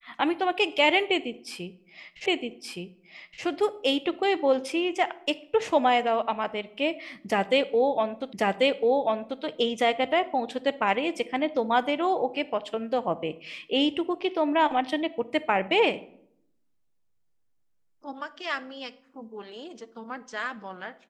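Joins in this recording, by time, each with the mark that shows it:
0:02.26: the same again, the last 1.17 s
0:08.33: the same again, the last 1.09 s

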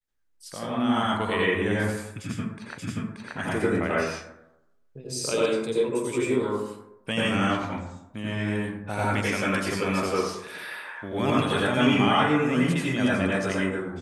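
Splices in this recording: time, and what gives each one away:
0:02.78: the same again, the last 0.58 s

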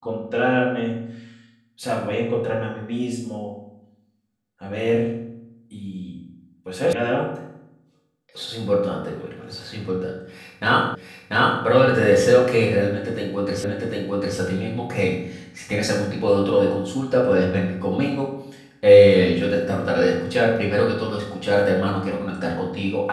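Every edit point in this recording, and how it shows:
0:06.93: cut off before it has died away
0:10.95: the same again, the last 0.69 s
0:13.64: the same again, the last 0.75 s

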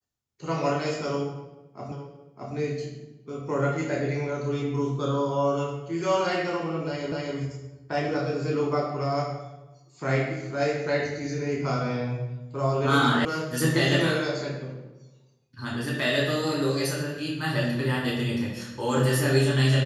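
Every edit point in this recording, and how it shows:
0:01.92: the same again, the last 0.62 s
0:07.12: the same again, the last 0.25 s
0:13.25: cut off before it has died away

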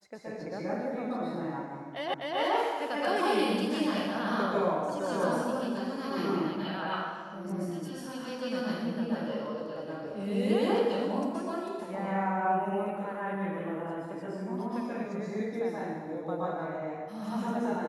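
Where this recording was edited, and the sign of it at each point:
0:02.14: the same again, the last 0.25 s

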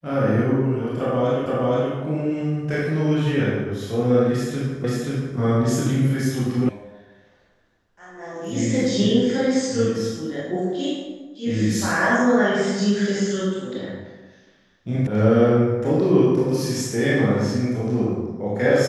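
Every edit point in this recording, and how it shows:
0:01.46: the same again, the last 0.47 s
0:04.84: the same again, the last 0.53 s
0:06.69: cut off before it has died away
0:15.07: cut off before it has died away

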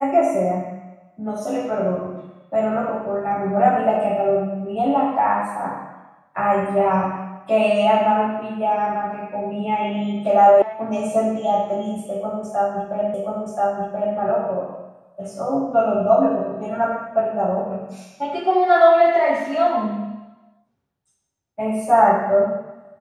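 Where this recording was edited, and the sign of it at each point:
0:10.62: cut off before it has died away
0:13.14: the same again, the last 1.03 s

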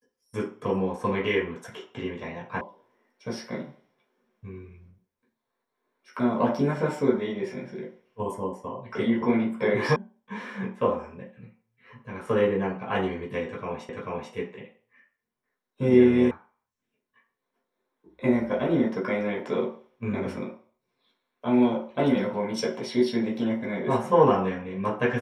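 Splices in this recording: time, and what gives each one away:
0:02.61: cut off before it has died away
0:09.96: cut off before it has died away
0:13.89: the same again, the last 0.44 s
0:16.31: cut off before it has died away

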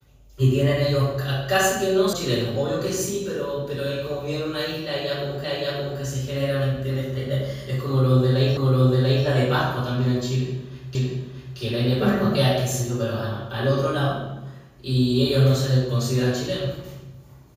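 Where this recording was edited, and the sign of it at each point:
0:02.13: cut off before it has died away
0:05.44: the same again, the last 0.57 s
0:08.57: the same again, the last 0.69 s
0:10.95: the same again, the last 0.63 s

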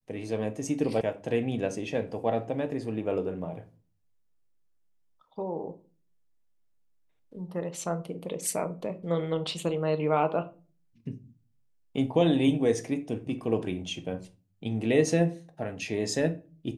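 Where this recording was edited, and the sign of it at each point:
0:01.01: cut off before it has died away

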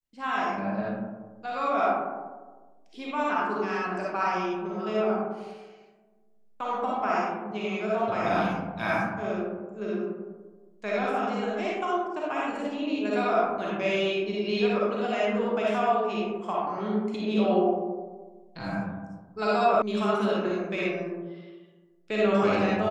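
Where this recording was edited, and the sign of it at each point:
0:19.82: cut off before it has died away

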